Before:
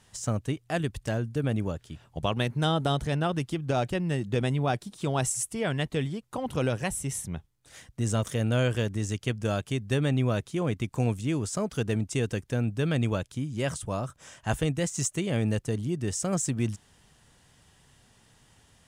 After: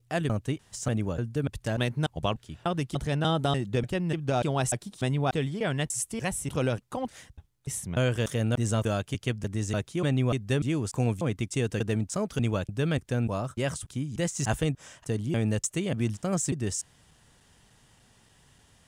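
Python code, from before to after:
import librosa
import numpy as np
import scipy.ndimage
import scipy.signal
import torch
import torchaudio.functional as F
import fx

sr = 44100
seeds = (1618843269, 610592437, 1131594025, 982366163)

y = fx.block_reorder(x, sr, ms=295.0, group=3)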